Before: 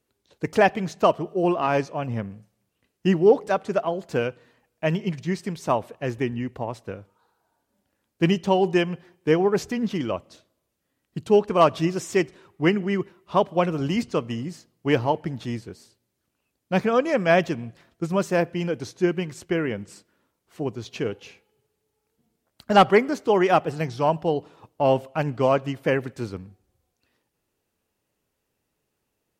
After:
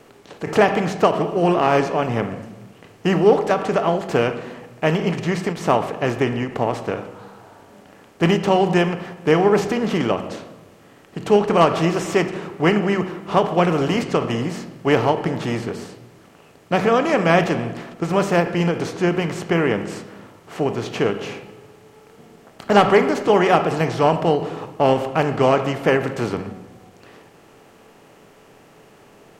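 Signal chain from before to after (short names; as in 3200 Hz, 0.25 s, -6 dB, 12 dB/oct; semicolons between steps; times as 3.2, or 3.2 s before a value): per-bin compression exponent 0.6; vibrato 1.6 Hz 8.6 cents; on a send at -8.5 dB: reverb RT60 1.0 s, pre-delay 7 ms; on the sum: ending taper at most 160 dB/s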